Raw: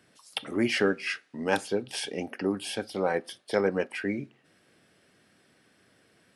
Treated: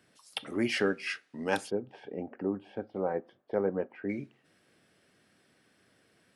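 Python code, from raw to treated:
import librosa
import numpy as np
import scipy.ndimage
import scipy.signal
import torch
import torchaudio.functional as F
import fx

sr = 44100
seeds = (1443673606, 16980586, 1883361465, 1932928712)

y = fx.lowpass(x, sr, hz=1000.0, slope=12, at=(1.69, 4.08), fade=0.02)
y = F.gain(torch.from_numpy(y), -3.5).numpy()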